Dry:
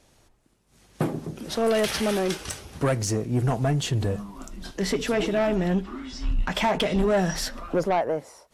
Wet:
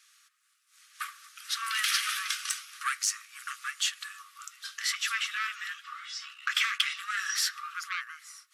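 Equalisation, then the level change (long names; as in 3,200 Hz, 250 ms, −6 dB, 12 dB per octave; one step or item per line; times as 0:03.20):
linear-phase brick-wall high-pass 1,100 Hz
+2.5 dB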